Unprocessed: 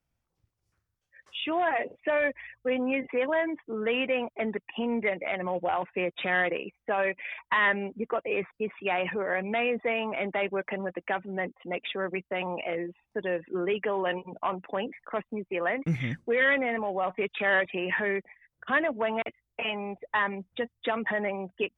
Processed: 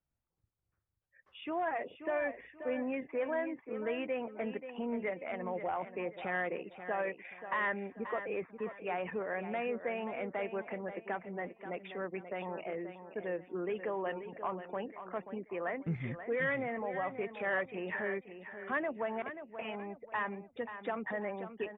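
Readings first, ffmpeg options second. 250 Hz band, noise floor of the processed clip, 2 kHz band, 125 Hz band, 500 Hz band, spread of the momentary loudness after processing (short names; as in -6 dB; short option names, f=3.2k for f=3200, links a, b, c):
-7.0 dB, -82 dBFS, -10.0 dB, -7.0 dB, -7.0 dB, 7 LU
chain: -af "lowpass=1.9k,aecho=1:1:533|1066|1599:0.299|0.0955|0.0306,volume=-7.5dB"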